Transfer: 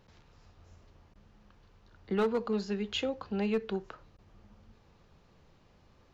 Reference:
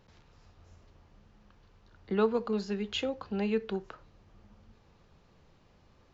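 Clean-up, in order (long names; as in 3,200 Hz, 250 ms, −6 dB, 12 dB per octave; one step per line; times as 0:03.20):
clipped peaks rebuilt −23 dBFS
repair the gap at 0:01.14/0:04.17, 13 ms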